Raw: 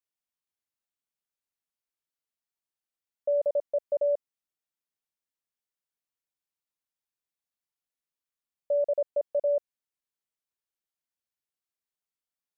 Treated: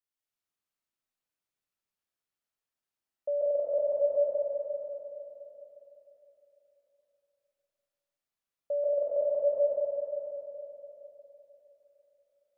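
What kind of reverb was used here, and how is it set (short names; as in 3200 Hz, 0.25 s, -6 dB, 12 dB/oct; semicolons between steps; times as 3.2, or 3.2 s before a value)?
digital reverb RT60 3.6 s, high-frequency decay 0.5×, pre-delay 0.11 s, DRR -7 dB; gain -5 dB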